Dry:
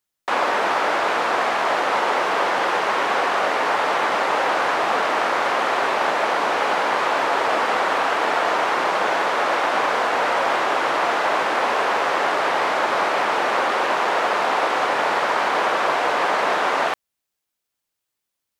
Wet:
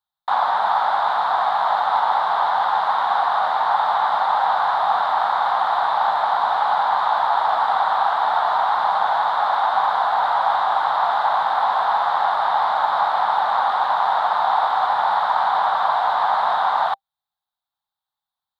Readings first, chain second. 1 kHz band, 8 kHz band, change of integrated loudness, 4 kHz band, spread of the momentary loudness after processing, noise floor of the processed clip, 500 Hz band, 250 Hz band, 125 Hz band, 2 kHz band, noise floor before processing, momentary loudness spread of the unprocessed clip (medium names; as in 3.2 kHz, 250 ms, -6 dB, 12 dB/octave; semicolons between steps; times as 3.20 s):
+3.5 dB, under -15 dB, +1.0 dB, -4.0 dB, 1 LU, under -85 dBFS, -6.5 dB, under -15 dB, no reading, -6.0 dB, -81 dBFS, 0 LU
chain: FFT filter 170 Hz 0 dB, 330 Hz -15 dB, 510 Hz -11 dB, 790 Hz +14 dB, 1.5 kHz +4 dB, 2.6 kHz -13 dB, 3.7 kHz +10 dB, 5.8 kHz -13 dB, 14 kHz -4 dB; trim -7 dB